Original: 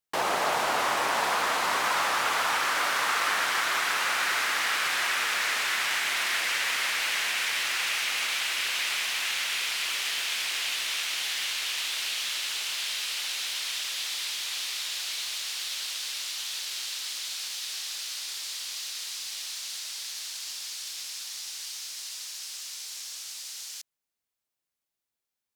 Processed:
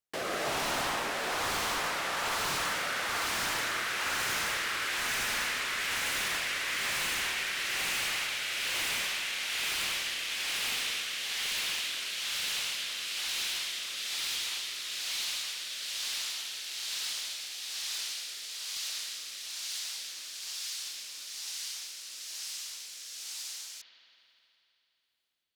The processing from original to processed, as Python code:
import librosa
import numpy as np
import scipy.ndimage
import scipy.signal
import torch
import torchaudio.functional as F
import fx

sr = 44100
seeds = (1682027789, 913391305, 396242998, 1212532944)

y = fx.rotary(x, sr, hz=1.1)
y = 10.0 ** (-27.5 / 20.0) * (np.abs((y / 10.0 ** (-27.5 / 20.0) + 3.0) % 4.0 - 2.0) - 1.0)
y = fx.rev_spring(y, sr, rt60_s=3.2, pass_ms=(53,), chirp_ms=30, drr_db=5.5)